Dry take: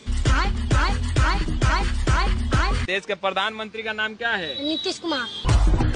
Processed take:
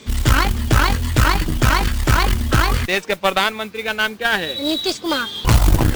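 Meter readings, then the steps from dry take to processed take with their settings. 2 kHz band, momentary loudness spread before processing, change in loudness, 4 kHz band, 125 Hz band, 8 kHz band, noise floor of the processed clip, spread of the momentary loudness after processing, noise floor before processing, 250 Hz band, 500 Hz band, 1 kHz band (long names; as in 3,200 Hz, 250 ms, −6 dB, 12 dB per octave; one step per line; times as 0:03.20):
+5.5 dB, 4 LU, +5.0 dB, +5.5 dB, +4.5 dB, +8.5 dB, −37 dBFS, 4 LU, −43 dBFS, +5.5 dB, +5.0 dB, +5.5 dB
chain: noise that follows the level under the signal 19 dB
harmonic generator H 2 −9 dB, 6 −19 dB, 8 −22 dB, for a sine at −8 dBFS
level +4 dB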